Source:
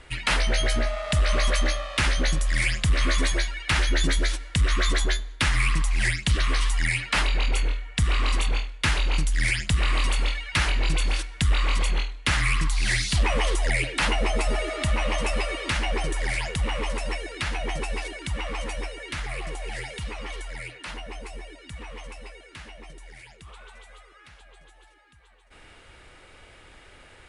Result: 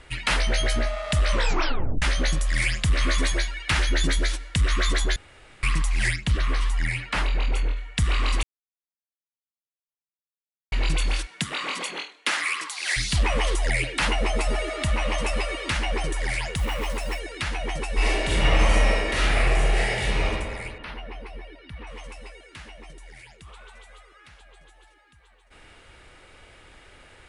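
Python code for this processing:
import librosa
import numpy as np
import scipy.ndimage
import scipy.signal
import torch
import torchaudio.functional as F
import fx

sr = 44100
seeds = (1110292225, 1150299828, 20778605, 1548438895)

y = fx.high_shelf(x, sr, hz=2500.0, db=-8.5, at=(6.16, 7.77))
y = fx.highpass(y, sr, hz=fx.line((11.25, 130.0), (12.96, 520.0)), slope=24, at=(11.25, 12.96), fade=0.02)
y = fx.block_float(y, sr, bits=5, at=(16.56, 17.19))
y = fx.reverb_throw(y, sr, start_s=17.94, length_s=2.31, rt60_s=1.8, drr_db=-10.0)
y = fx.moving_average(y, sr, points=6, at=(20.78, 21.87))
y = fx.edit(y, sr, fx.tape_stop(start_s=1.31, length_s=0.71),
    fx.room_tone_fill(start_s=5.16, length_s=0.47),
    fx.silence(start_s=8.43, length_s=2.29), tone=tone)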